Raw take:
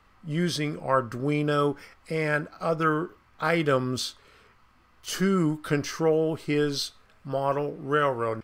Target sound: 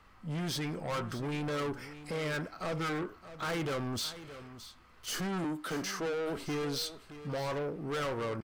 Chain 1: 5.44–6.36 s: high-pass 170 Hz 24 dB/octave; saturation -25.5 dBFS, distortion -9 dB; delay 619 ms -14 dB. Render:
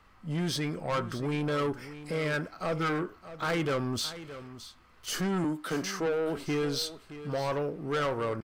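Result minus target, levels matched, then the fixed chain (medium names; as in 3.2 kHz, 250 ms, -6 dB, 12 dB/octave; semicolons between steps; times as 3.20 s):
saturation: distortion -4 dB
5.44–6.36 s: high-pass 170 Hz 24 dB/octave; saturation -32 dBFS, distortion -5 dB; delay 619 ms -14 dB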